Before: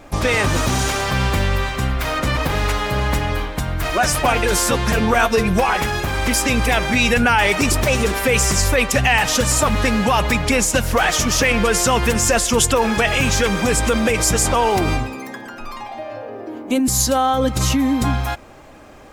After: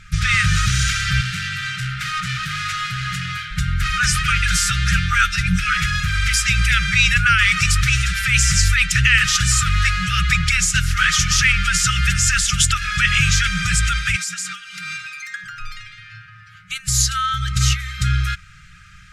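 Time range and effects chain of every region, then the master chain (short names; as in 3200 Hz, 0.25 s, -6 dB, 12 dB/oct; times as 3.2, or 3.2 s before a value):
1.21–3.51 HPF 120 Hz 24 dB/oct + doubler 16 ms -12.5 dB + hard clip -22.5 dBFS
14.16–15.44 HPF 220 Hz 24 dB/oct + comb 4.3 ms, depth 61% + compressor 12:1, threshold -22 dBFS
whole clip: LPF 7900 Hz 12 dB/oct; FFT band-reject 190–1200 Hz; gain +3 dB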